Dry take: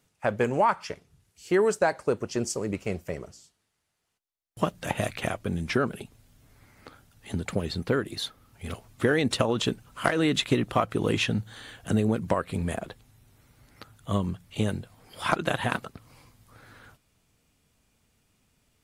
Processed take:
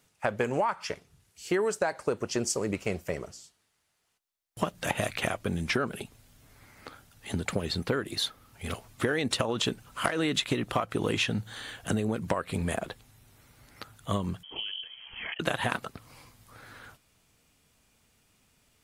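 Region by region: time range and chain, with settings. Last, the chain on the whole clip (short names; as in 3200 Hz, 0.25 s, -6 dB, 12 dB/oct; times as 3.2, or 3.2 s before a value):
14.43–15.4 low shelf 140 Hz +7.5 dB + compressor 8:1, threshold -37 dBFS + inverted band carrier 3200 Hz
whole clip: low shelf 460 Hz -5 dB; compressor, threshold -28 dBFS; gain +4 dB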